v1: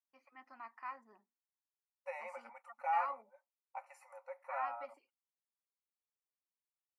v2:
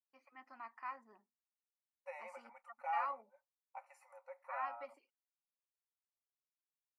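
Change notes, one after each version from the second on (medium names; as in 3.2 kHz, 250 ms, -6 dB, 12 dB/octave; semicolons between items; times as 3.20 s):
second voice -4.5 dB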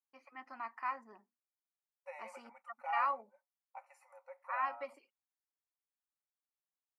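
first voice +7.0 dB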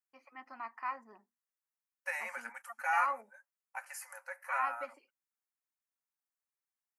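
second voice: remove boxcar filter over 27 samples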